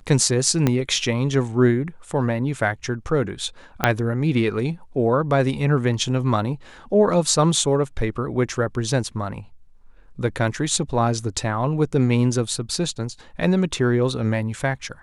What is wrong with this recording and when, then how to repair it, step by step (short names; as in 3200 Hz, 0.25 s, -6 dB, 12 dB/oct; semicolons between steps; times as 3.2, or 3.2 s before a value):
0.67 pop -6 dBFS
3.84 pop -2 dBFS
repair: de-click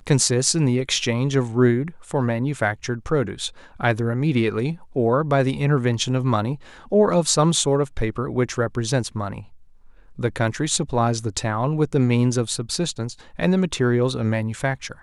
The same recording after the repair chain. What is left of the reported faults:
0.67 pop
3.84 pop